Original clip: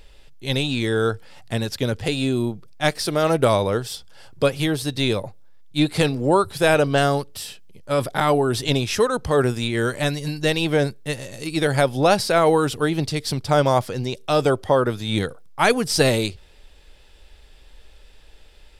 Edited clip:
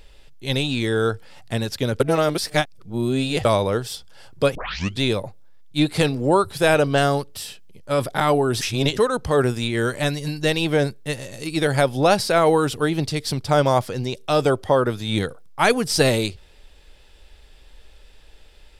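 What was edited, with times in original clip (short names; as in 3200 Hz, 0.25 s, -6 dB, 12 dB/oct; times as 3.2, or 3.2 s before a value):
2–3.45 reverse
4.55 tape start 0.46 s
8.61–8.97 reverse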